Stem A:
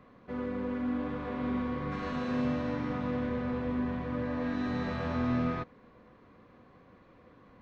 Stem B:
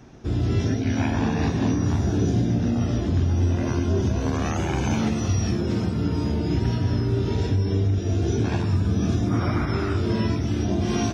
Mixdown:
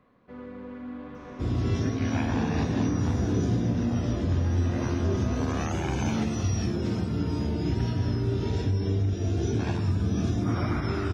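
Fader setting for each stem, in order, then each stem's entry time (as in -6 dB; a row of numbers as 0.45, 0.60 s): -6.0, -4.0 dB; 0.00, 1.15 s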